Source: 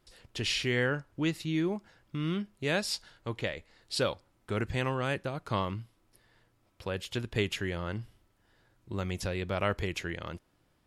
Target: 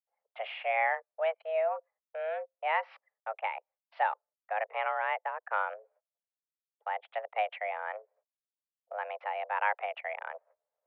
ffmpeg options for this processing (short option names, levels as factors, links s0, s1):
-af "agate=range=0.0178:threshold=0.00141:ratio=16:detection=peak,anlmdn=0.398,areverse,acompressor=mode=upward:threshold=0.0178:ratio=2.5,areverse,highpass=f=240:t=q:w=0.5412,highpass=f=240:t=q:w=1.307,lowpass=f=2100:t=q:w=0.5176,lowpass=f=2100:t=q:w=0.7071,lowpass=f=2100:t=q:w=1.932,afreqshift=320,volume=1.19"